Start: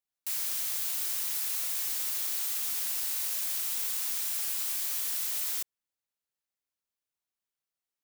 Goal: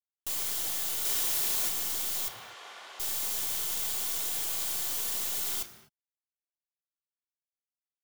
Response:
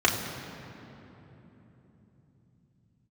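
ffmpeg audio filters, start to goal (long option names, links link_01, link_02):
-filter_complex "[0:a]asettb=1/sr,asplit=3[link_01][link_02][link_03];[link_01]atrim=end=1.054[link_04];[link_02]atrim=start=1.05:end=1.69,asetpts=PTS-STARTPTS,afade=type=in:duration=0.004:curve=qsin,afade=type=out:start_time=0.636:duration=0.004:curve=qsin,acontrast=42[link_05];[link_03]atrim=start=1.686[link_06];[link_04][link_05]acrossfade=duration=0.004:curve1=hsin:curve2=qsin[link_07];[link_07][link_06]acrossfade=duration=0.004:curve1=qsin:curve2=hsin,acrusher=bits=6:dc=4:mix=0:aa=0.000001,asoftclip=type=tanh:threshold=-30dB,asettb=1/sr,asplit=3[link_08][link_09][link_10];[link_08]atrim=end=2.284[link_11];[link_09]atrim=start=2.28:end=3,asetpts=PTS-STARTPTS,afade=type=in:duration=0.004:curve=qsin,afade=type=out:start_time=0.716:duration=0.004:curve=qsin,highpass=580,lowpass=2300[link_12];[link_10]atrim=start=2.996[link_13];[link_11][link_12]acrossfade=duration=0.004:curve1=hsin:curve2=qsin[link_14];[link_14][link_13]acrossfade=duration=0.004:curve1=qsin:curve2=hsin,asplit=2[link_15][link_16];[1:a]atrim=start_sample=2205,afade=type=out:start_time=0.31:duration=0.01,atrim=end_sample=14112[link_17];[link_16][link_17]afir=irnorm=-1:irlink=0,volume=-16dB[link_18];[link_15][link_18]amix=inputs=2:normalize=0,volume=2.5dB"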